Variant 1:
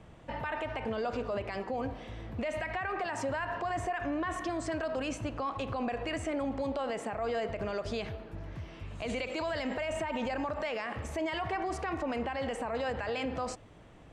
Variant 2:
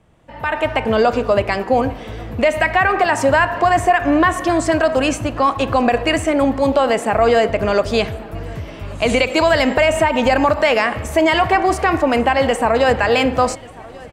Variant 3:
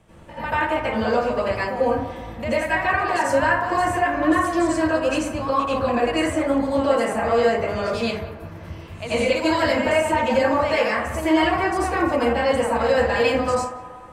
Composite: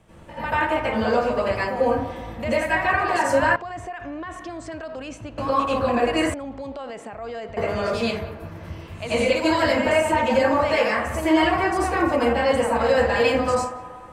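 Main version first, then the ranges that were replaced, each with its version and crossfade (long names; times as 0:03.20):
3
0:03.56–0:05.38: punch in from 1
0:06.34–0:07.57: punch in from 1
not used: 2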